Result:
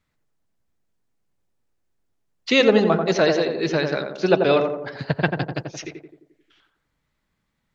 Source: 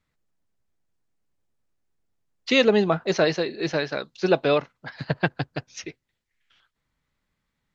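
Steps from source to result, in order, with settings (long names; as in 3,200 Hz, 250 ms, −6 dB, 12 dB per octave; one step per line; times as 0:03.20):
tape delay 88 ms, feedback 63%, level −3 dB, low-pass 1,100 Hz
level +2 dB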